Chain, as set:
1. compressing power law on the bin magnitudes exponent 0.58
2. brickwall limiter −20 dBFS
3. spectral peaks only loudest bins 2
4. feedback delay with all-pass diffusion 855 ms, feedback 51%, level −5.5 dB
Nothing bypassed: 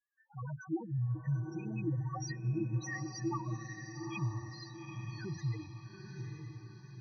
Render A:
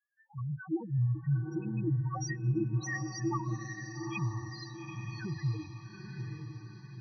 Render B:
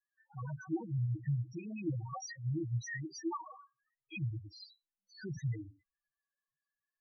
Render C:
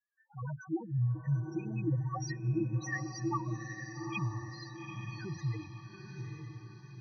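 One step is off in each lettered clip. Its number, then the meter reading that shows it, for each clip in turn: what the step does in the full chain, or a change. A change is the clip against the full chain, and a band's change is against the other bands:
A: 1, change in integrated loudness +4.0 LU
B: 4, echo-to-direct ratio −4.0 dB to none audible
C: 2, change in momentary loudness spread +2 LU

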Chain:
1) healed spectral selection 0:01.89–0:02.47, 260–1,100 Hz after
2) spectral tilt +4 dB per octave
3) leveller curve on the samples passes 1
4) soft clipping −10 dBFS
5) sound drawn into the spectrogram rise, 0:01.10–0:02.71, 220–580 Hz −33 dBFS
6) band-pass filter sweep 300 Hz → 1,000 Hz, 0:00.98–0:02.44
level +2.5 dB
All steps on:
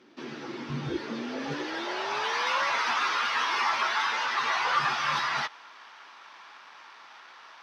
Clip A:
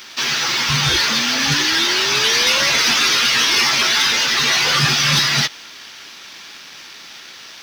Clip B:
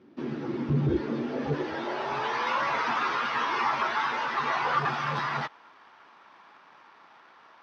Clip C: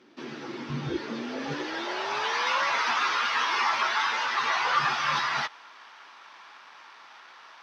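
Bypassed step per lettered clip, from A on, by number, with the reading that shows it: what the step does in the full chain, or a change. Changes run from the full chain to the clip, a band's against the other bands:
6, 8 kHz band +14.0 dB
2, 4 kHz band −10.5 dB
4, distortion level −22 dB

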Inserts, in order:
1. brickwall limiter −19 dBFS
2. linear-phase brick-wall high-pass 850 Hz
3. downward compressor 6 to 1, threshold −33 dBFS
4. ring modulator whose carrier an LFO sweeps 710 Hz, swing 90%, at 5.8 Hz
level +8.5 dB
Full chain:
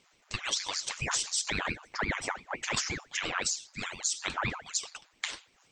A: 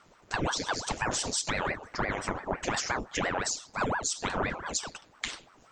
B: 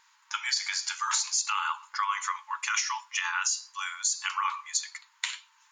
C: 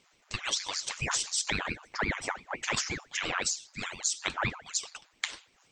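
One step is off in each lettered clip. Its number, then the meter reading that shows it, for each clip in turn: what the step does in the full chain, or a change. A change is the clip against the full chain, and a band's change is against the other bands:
2, 4 kHz band −6.0 dB
4, 1 kHz band +5.0 dB
1, change in crest factor +3.0 dB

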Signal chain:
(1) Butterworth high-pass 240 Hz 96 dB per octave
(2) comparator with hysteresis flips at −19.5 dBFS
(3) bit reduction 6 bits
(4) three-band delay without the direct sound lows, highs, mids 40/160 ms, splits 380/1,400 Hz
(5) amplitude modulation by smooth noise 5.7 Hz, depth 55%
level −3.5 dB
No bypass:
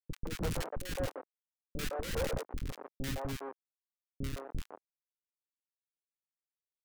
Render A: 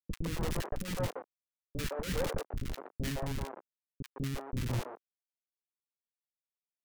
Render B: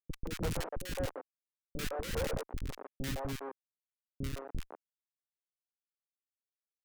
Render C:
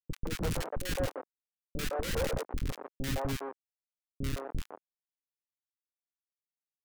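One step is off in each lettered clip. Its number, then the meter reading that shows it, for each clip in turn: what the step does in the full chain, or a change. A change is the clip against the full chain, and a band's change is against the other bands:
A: 1, 125 Hz band +3.5 dB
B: 3, distortion level −13 dB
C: 5, change in crest factor −1.5 dB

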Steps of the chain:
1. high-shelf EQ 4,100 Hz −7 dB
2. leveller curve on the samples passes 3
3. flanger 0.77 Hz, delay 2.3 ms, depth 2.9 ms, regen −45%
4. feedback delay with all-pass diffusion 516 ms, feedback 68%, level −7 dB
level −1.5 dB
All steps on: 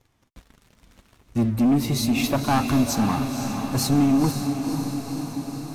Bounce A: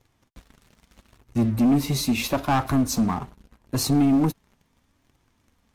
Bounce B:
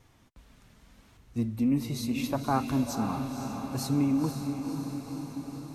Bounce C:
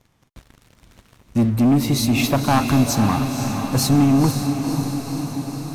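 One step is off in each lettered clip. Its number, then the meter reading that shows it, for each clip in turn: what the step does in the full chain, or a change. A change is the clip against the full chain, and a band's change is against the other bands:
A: 4, echo-to-direct ratio −4.5 dB to none audible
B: 2, change in crest factor +5.0 dB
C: 3, change in integrated loudness +4.0 LU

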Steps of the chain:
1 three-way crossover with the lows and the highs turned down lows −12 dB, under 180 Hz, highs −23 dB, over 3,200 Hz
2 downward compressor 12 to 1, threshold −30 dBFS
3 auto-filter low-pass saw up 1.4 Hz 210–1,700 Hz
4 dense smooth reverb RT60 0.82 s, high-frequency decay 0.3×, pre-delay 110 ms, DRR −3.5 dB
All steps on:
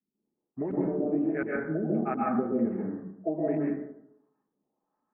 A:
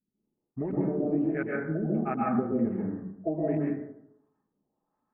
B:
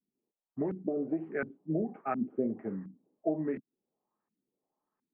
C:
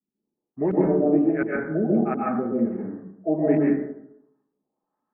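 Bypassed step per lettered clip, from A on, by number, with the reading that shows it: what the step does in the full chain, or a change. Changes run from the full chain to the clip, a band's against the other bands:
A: 1, 125 Hz band +4.0 dB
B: 4, change in crest factor +2.0 dB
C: 2, average gain reduction 4.5 dB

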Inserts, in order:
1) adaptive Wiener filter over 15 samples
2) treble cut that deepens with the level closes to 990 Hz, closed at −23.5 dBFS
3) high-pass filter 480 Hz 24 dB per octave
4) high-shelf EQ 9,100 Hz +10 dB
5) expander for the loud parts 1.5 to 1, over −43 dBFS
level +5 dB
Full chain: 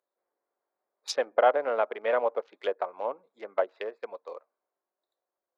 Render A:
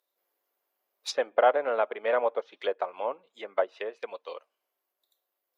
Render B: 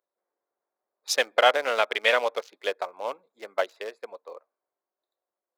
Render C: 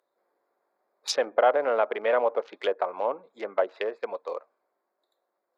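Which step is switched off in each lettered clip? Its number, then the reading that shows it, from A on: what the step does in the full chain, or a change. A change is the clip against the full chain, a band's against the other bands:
1, change in momentary loudness spread −2 LU
2, 4 kHz band +12.0 dB
5, 4 kHz band +2.5 dB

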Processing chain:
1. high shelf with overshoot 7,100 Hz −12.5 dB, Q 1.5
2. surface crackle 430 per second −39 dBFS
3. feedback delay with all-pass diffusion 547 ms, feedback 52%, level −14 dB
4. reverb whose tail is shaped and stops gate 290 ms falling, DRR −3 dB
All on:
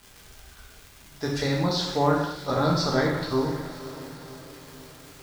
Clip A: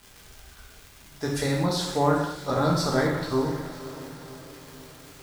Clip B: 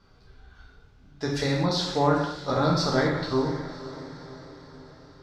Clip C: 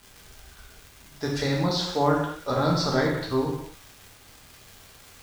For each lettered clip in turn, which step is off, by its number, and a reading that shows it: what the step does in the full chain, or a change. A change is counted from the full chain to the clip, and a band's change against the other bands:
1, 8 kHz band +3.0 dB
2, change in momentary loudness spread −3 LU
3, change in momentary loudness spread −12 LU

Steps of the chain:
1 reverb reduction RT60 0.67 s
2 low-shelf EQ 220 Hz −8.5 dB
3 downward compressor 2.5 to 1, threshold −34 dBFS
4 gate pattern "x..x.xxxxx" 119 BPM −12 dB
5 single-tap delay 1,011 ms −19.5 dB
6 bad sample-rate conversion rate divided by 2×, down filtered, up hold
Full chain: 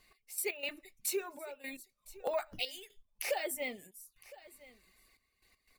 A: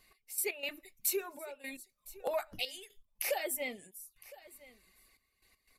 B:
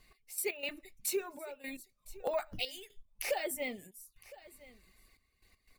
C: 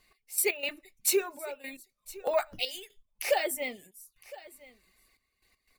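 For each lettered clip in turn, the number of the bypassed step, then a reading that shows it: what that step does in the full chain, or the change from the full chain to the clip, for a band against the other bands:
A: 6, change in crest factor +3.0 dB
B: 2, 125 Hz band +6.0 dB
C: 3, average gain reduction 4.0 dB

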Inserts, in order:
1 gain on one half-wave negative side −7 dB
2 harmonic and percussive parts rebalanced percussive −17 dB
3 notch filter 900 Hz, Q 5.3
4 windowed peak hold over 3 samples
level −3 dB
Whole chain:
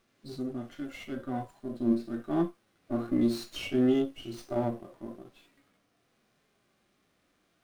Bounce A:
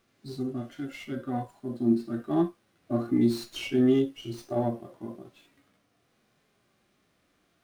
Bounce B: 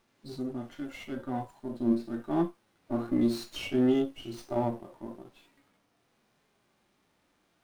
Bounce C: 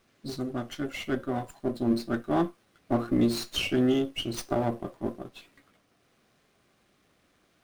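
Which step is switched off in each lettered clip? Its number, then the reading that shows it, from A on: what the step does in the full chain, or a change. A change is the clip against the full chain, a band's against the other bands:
1, distortion level −8 dB
3, 1 kHz band +2.5 dB
2, 250 Hz band −5.0 dB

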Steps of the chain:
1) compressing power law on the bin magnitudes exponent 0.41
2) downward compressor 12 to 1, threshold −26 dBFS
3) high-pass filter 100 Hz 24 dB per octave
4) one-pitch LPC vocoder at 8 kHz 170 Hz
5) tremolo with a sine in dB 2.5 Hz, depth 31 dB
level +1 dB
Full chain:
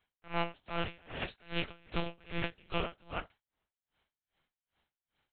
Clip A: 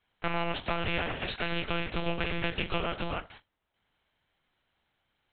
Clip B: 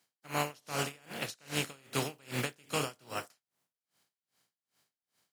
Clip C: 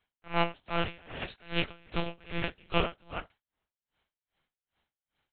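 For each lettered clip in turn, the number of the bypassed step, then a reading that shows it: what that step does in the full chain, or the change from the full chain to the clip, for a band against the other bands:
5, change in momentary loudness spread −1 LU
4, change in integrated loudness +2.5 LU
2, average gain reduction 3.5 dB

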